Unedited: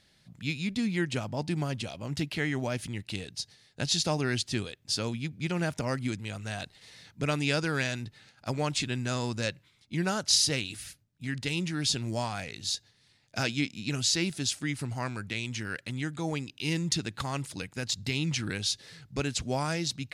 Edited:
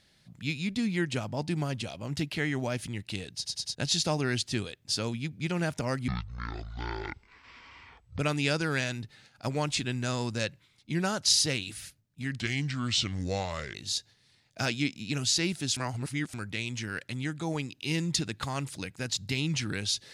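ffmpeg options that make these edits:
-filter_complex "[0:a]asplit=11[a][b][c][d][e][f][g][h][i][j][k];[a]atrim=end=3.452[l];[b]atrim=start=3.348:end=3.452[m];[c]atrim=start=3.348:end=3.452[n];[d]atrim=start=3.348:end=3.452[o];[e]atrim=start=3.748:end=6.084[p];[f]atrim=start=6.08:end=7.22,asetpts=PTS-STARTPTS,asetrate=23814,aresample=44100[q];[g]atrim=start=7.216:end=11.434[r];[h]atrim=start=11.43:end=12.52,asetpts=PTS-STARTPTS,asetrate=35721,aresample=44100,atrim=end_sample=59344,asetpts=PTS-STARTPTS[s];[i]atrim=start=12.516:end=14.542[t];[j]atrim=start=14.538:end=15.112,asetpts=PTS-STARTPTS,areverse[u];[k]atrim=start=15.108[v];[l][m]acrossfade=d=0.004:c1=hsin:c2=hsin[w];[w][n]acrossfade=d=0.004:c1=hsin:c2=hsin[x];[x][o]acrossfade=d=0.004:c1=hsin:c2=hsin[y];[y][p]acrossfade=d=0.004:c1=hsin:c2=hsin[z];[z][q]acrossfade=d=0.004:c1=hsin:c2=hsin[aa];[aa][r]acrossfade=d=0.004:c1=hsin:c2=hsin[ab];[ab][s]acrossfade=d=0.004:c1=hsin:c2=hsin[ac];[ac][t]acrossfade=d=0.004:c1=hsin:c2=hsin[ad];[ad][u]acrossfade=d=0.004:c1=hsin:c2=hsin[ae];[ae][v]acrossfade=d=0.004:c1=hsin:c2=hsin"

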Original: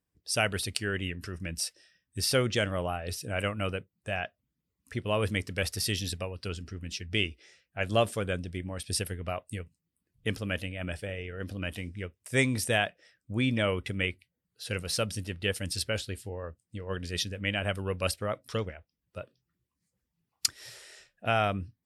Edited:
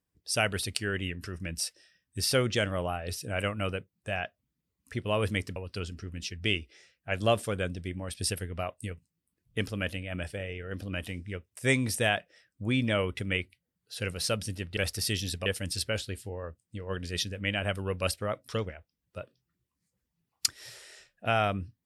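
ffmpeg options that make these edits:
-filter_complex "[0:a]asplit=4[a][b][c][d];[a]atrim=end=5.562[e];[b]atrim=start=6.248:end=15.462[f];[c]atrim=start=5.558:end=6.252[g];[d]atrim=start=15.458[h];[e][f]acrossfade=d=0.004:c1=hsin:c2=hsin[i];[i][g]acrossfade=d=0.004:c1=hsin:c2=hsin[j];[j][h]acrossfade=d=0.004:c1=hsin:c2=hsin"

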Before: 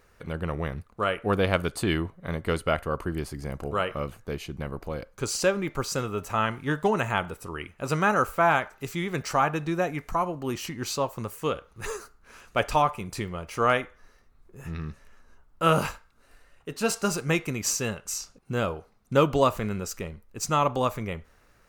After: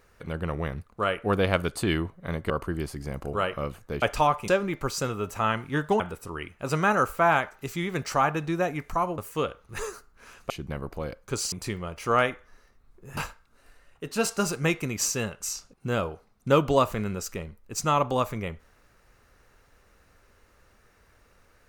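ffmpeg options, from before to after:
-filter_complex "[0:a]asplit=9[a][b][c][d][e][f][g][h][i];[a]atrim=end=2.502[j];[b]atrim=start=2.878:end=4.402[k];[c]atrim=start=12.568:end=13.032[l];[d]atrim=start=5.418:end=6.942[m];[e]atrim=start=7.188:end=10.372[n];[f]atrim=start=11.248:end=12.572[o];[g]atrim=start=4.398:end=5.422[p];[h]atrim=start=13.028:end=14.682[q];[i]atrim=start=15.818[r];[j][k]acrossfade=d=0.004:c1=hsin:c2=hsin[s];[s][l]acrossfade=d=0.004:c1=hsin:c2=hsin[t];[t][m]acrossfade=d=0.004:c1=hsin:c2=hsin[u];[u][n]acrossfade=d=0.004:c1=hsin:c2=hsin[v];[v][o]acrossfade=d=0.004:c1=hsin:c2=hsin[w];[w][p]acrossfade=d=0.004:c1=hsin:c2=hsin[x];[x][q]acrossfade=d=0.004:c1=hsin:c2=hsin[y];[y][r]acrossfade=d=0.004:c1=hsin:c2=hsin"

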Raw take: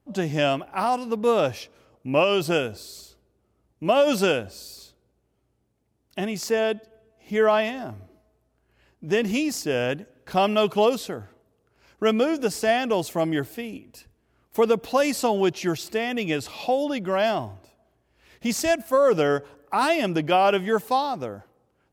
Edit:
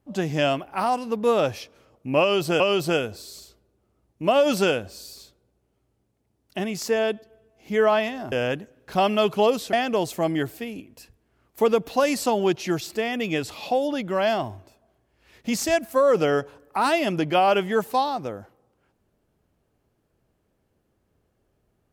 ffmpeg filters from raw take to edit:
-filter_complex "[0:a]asplit=4[a][b][c][d];[a]atrim=end=2.602[e];[b]atrim=start=2.208:end=7.932[f];[c]atrim=start=9.708:end=11.122[g];[d]atrim=start=12.698[h];[e][f]acrossfade=d=0.004:c1=hsin:c2=hsin[i];[i][g]acrossfade=d=0.004:c1=hsin:c2=hsin[j];[j][h]acrossfade=d=0.004:c1=hsin:c2=hsin"

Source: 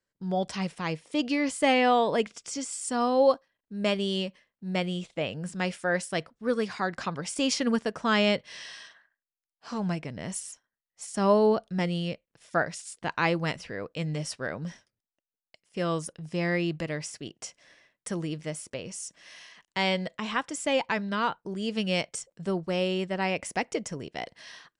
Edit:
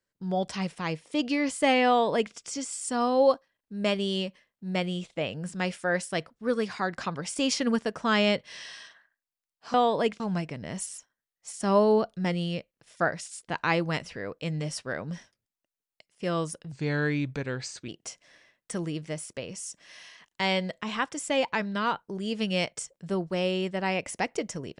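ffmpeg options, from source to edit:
-filter_complex "[0:a]asplit=5[a][b][c][d][e];[a]atrim=end=9.742[f];[b]atrim=start=1.878:end=2.342[g];[c]atrim=start=9.738:end=16.264[h];[d]atrim=start=16.26:end=17.25,asetpts=PTS-STARTPTS,asetrate=37485,aresample=44100[i];[e]atrim=start=17.246[j];[f][g]acrossfade=d=0.004:c1=hsin:c2=hsin[k];[k][h]acrossfade=d=0.004:c1=hsin:c2=hsin[l];[l][i]acrossfade=d=0.004:c1=hsin:c2=hsin[m];[m][j]acrossfade=d=0.004:c1=hsin:c2=hsin"

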